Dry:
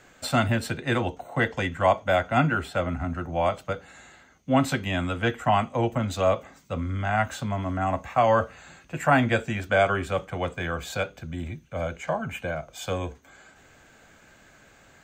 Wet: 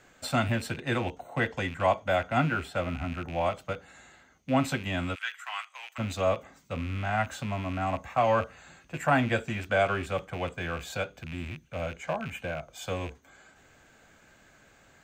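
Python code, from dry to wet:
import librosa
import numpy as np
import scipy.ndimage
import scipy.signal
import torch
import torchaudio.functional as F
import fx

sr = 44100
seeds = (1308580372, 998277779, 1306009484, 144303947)

y = fx.rattle_buzz(x, sr, strikes_db=-35.0, level_db=-27.0)
y = fx.highpass(y, sr, hz=1300.0, slope=24, at=(5.14, 5.98), fade=0.02)
y = F.gain(torch.from_numpy(y), -4.0).numpy()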